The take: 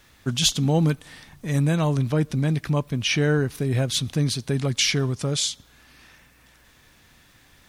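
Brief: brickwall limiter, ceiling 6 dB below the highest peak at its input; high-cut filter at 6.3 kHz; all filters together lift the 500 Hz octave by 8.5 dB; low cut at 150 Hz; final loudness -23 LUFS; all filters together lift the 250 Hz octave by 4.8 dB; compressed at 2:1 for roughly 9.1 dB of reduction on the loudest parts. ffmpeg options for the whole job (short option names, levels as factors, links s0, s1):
-af "highpass=150,lowpass=6300,equalizer=f=250:t=o:g=5.5,equalizer=f=500:t=o:g=8.5,acompressor=threshold=0.0398:ratio=2,volume=2.11,alimiter=limit=0.237:level=0:latency=1"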